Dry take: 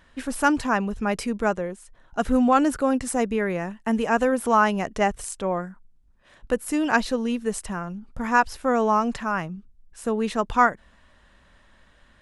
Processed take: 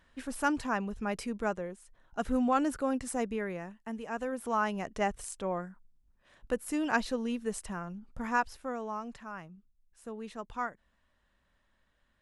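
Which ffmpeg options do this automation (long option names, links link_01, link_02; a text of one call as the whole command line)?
ffmpeg -i in.wav -af "afade=type=out:start_time=3.24:duration=0.76:silence=0.398107,afade=type=in:start_time=4:duration=1.14:silence=0.354813,afade=type=out:start_time=8.21:duration=0.59:silence=0.354813" out.wav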